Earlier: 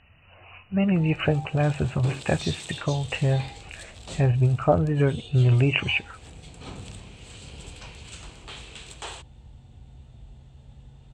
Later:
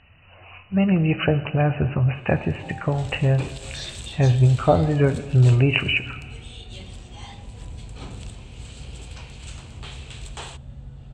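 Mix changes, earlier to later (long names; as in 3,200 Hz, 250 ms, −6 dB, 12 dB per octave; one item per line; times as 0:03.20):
first sound: entry +1.35 s
second sound +8.5 dB
reverb: on, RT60 1.5 s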